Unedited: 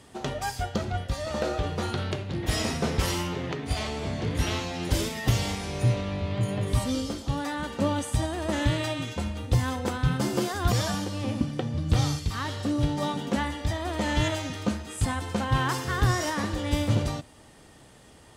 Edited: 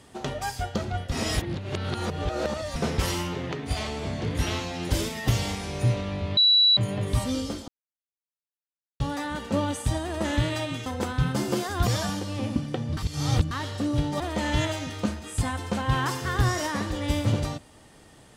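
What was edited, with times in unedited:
1.12–2.76 reverse
6.37 add tone 3930 Hz -15 dBFS 0.40 s
7.28 insert silence 1.32 s
9.14–9.71 cut
11.82–12.36 reverse
13.05–13.83 cut

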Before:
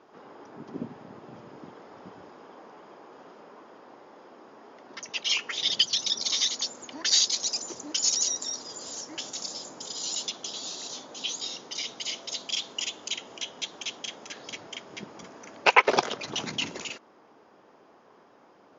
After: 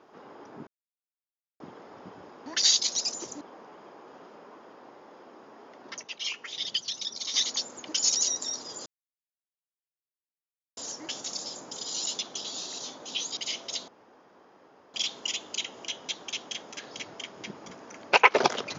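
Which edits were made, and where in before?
0.67–1.6 mute
5.08–6.39 gain -7 dB
6.94–7.89 move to 2.46
8.86 insert silence 1.91 s
11.46–11.96 cut
12.47 insert room tone 1.06 s

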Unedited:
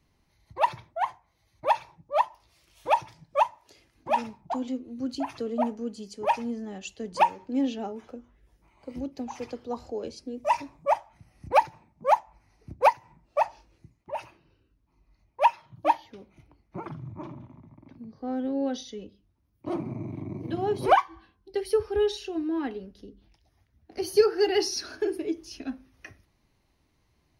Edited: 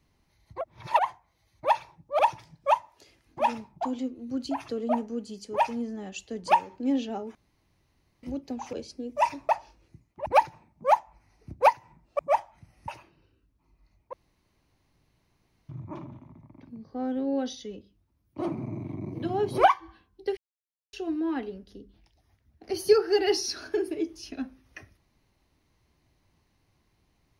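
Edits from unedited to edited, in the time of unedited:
0.61–0.99 reverse
2.19–2.88 cut
8.04–8.92 room tone
9.42–10.01 cut
10.77–11.46 swap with 13.39–14.16
15.41–16.97 room tone
21.65–22.21 mute

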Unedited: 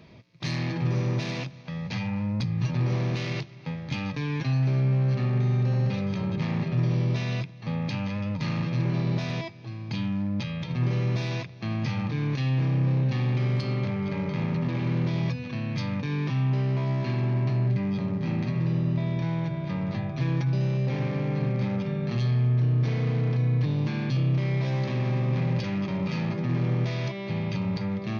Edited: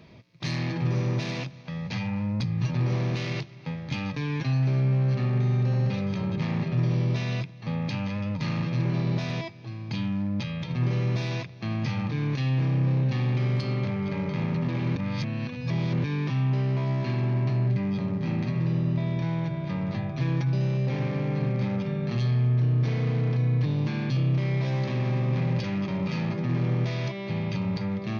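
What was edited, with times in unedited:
14.96–16.04 reverse

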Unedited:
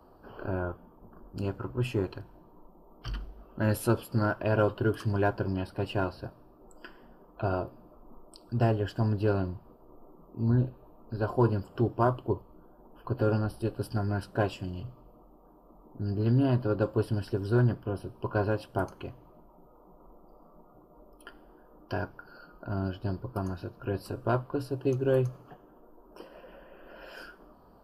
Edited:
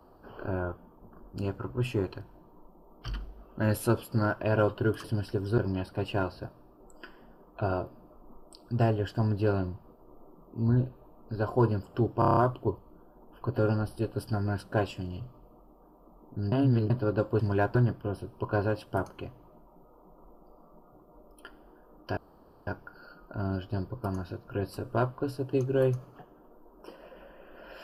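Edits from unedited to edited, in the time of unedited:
5.04–5.39 swap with 17.03–17.57
12 stutter 0.03 s, 7 plays
16.15–16.53 reverse
21.99 insert room tone 0.50 s

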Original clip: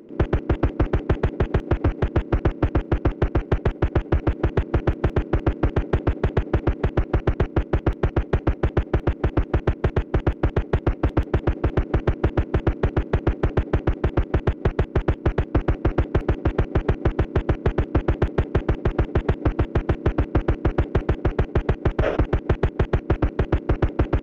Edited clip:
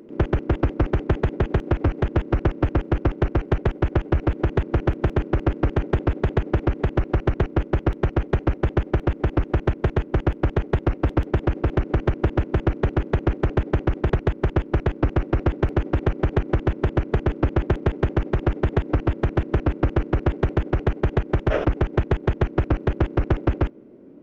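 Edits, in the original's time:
14.12–14.64 cut

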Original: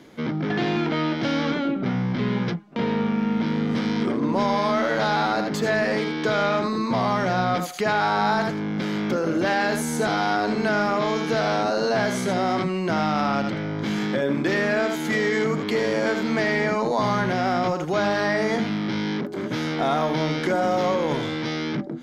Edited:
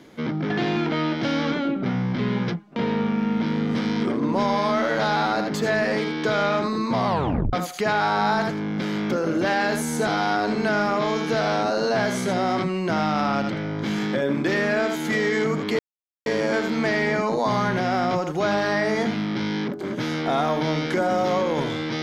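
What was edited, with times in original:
7.07 tape stop 0.46 s
15.79 insert silence 0.47 s

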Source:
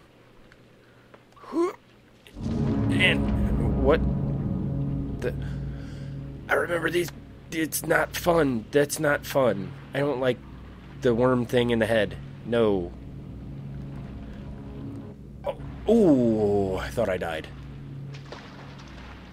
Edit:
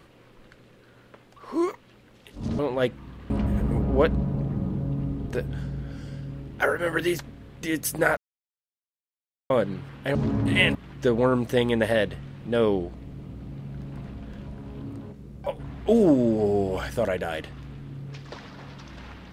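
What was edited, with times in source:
2.59–3.19 swap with 10.04–10.75
8.06–9.39 mute

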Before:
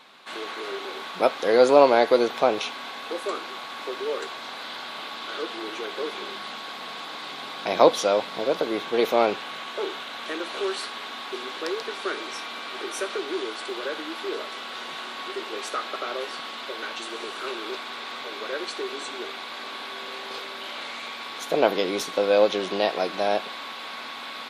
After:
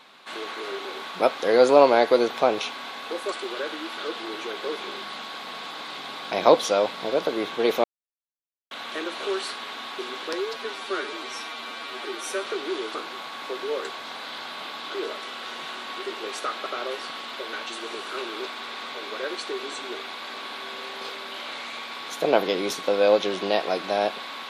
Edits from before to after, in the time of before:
3.32–5.32 swap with 13.58–14.24
9.18–10.05 mute
11.67–13.08 stretch 1.5×

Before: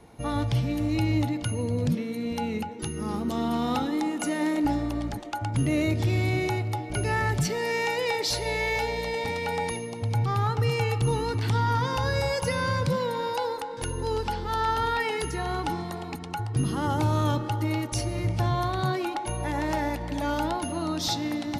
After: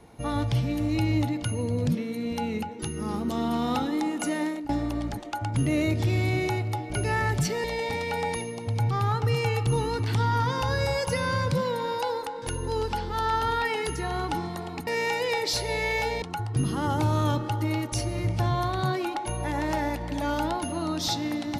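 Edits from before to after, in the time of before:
4.37–4.69 fade out, to -20 dB
7.64–8.99 move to 16.22

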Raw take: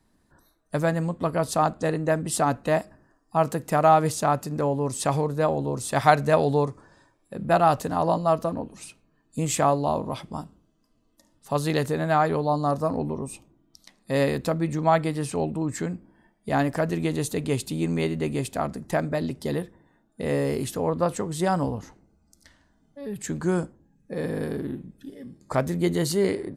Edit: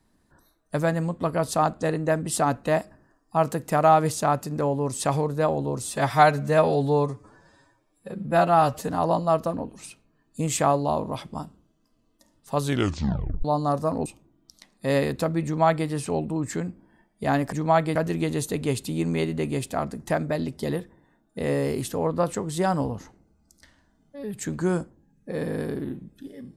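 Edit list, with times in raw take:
5.84–7.87 stretch 1.5×
11.59 tape stop 0.84 s
13.04–13.31 cut
14.7–15.13 copy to 16.78

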